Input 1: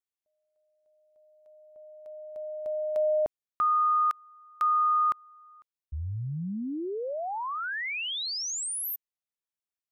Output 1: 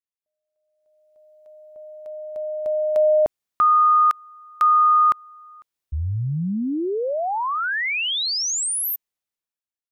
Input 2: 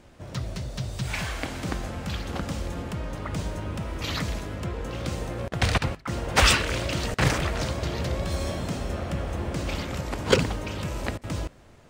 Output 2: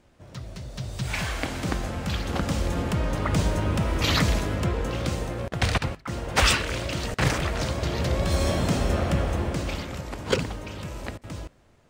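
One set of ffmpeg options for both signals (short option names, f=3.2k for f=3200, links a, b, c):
-af "dynaudnorm=f=200:g=9:m=16dB,volume=-7dB"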